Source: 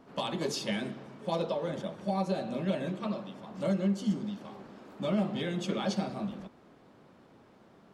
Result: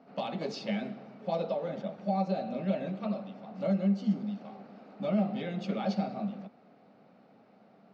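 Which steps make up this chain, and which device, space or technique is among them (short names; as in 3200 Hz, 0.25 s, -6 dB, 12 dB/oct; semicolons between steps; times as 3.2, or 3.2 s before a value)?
kitchen radio (speaker cabinet 190–4500 Hz, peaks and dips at 200 Hz +5 dB, 350 Hz -9 dB, 730 Hz +6 dB, 1000 Hz -9 dB, 1700 Hz -6 dB, 3300 Hz -9 dB)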